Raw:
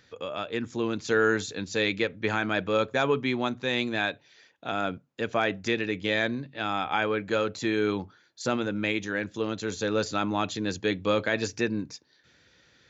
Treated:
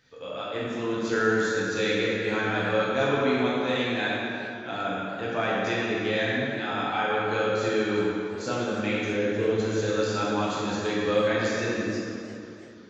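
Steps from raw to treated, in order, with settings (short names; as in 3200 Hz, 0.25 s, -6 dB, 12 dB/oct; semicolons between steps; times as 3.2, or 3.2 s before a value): 9.03–9.59 fifteen-band EQ 100 Hz +10 dB, 400 Hz +10 dB, 1600 Hz -6 dB; plate-style reverb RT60 2.6 s, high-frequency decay 0.65×, DRR -7.5 dB; warbling echo 0.33 s, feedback 52%, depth 132 cents, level -18 dB; gain -7 dB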